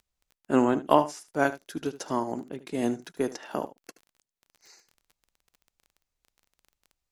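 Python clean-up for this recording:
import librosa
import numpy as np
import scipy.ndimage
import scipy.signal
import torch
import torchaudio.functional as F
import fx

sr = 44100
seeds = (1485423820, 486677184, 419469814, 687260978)

y = fx.fix_declick_ar(x, sr, threshold=6.5)
y = fx.fix_echo_inverse(y, sr, delay_ms=75, level_db=-15.5)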